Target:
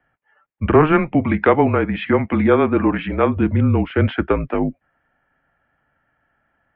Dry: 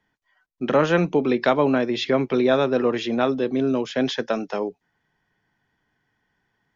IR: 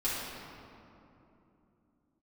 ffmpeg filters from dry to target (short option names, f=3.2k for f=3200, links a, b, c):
-filter_complex "[0:a]highpass=f=210:t=q:w=0.5412,highpass=f=210:t=q:w=1.307,lowpass=f=2.7k:t=q:w=0.5176,lowpass=f=2.7k:t=q:w=0.7071,lowpass=f=2.7k:t=q:w=1.932,afreqshift=-160,asettb=1/sr,asplit=3[a][b][c];[a]atrim=end=0.924[d];[b]atrim=start=0.92:end=3.37,asetpts=PTS-STARTPTS,afade=t=in:d=0.004:c=qsin,afade=t=out:st=2.446:d=0.004:c=qsin,lowshelf=f=130:g=-11.5[e];[c]atrim=start=3.366[f];[d][e]acrossfade=d=0.004:c1=hsin:c2=qsin[g];[g][f]acrossfade=d=0.004:c1=qsin:c2=hsin,volume=6.5dB"